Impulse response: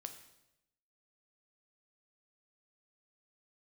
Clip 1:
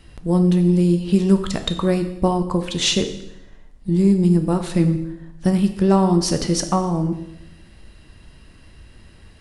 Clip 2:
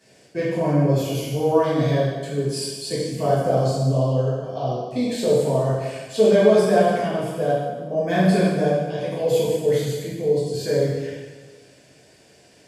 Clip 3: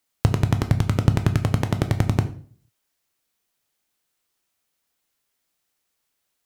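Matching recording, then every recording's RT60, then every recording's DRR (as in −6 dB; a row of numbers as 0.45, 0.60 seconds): 1; 0.90, 1.3, 0.45 seconds; 6.5, −9.0, 7.5 decibels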